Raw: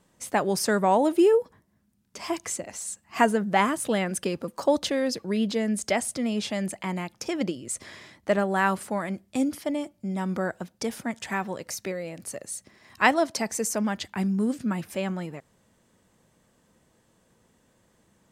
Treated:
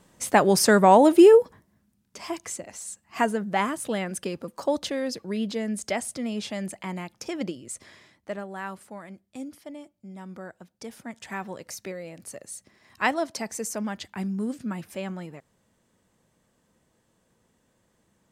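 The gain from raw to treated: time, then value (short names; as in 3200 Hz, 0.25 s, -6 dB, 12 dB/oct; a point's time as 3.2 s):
1.37 s +6 dB
2.32 s -3 dB
7.52 s -3 dB
8.5 s -12 dB
10.6 s -12 dB
11.47 s -4 dB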